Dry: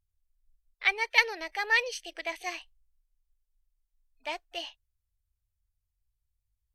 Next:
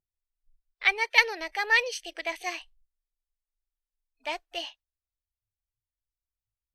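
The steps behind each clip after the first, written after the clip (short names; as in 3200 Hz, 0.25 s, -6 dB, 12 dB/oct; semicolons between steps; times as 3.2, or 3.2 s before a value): spectral noise reduction 17 dB; gain +2.5 dB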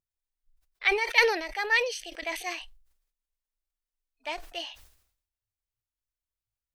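sustainer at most 84 dB/s; gain -2 dB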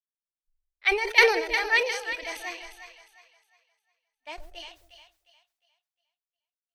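split-band echo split 630 Hz, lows 0.133 s, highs 0.356 s, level -6 dB; three-band expander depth 70%; gain -2.5 dB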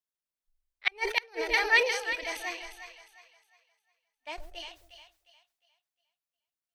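flipped gate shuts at -10 dBFS, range -35 dB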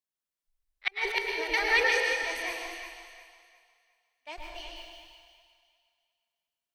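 plate-style reverb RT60 1.4 s, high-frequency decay 0.95×, pre-delay 95 ms, DRR 0 dB; gain -2.5 dB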